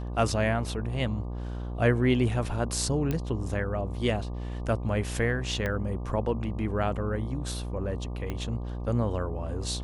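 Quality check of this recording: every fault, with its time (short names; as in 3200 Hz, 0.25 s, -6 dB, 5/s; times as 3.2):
buzz 60 Hz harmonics 20 -34 dBFS
3.11 pop -16 dBFS
5.66 pop -17 dBFS
8.3 pop -20 dBFS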